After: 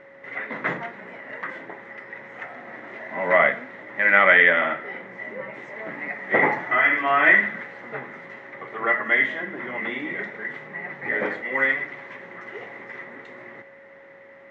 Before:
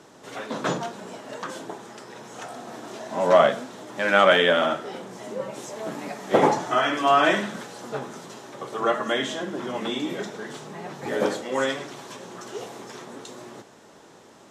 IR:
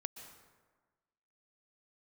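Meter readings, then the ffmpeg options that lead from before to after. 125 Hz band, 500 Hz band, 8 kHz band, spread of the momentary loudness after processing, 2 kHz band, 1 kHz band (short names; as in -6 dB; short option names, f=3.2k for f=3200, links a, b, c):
-5.0 dB, -4.0 dB, under -25 dB, 22 LU, +9.0 dB, -2.0 dB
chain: -af "aeval=exprs='val(0)+0.00708*sin(2*PI*550*n/s)':c=same,lowpass=f=2k:t=q:w=16,volume=-5dB"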